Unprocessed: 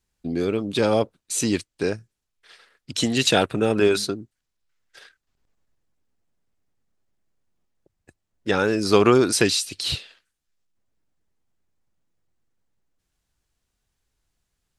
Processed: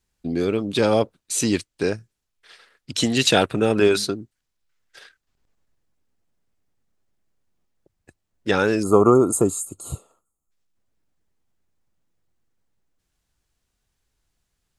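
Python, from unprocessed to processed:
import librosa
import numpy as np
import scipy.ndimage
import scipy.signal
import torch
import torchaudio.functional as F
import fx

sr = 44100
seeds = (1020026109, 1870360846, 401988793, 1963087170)

y = fx.spec_box(x, sr, start_s=8.83, length_s=1.68, low_hz=1400.0, high_hz=6400.0, gain_db=-28)
y = y * librosa.db_to_amplitude(1.5)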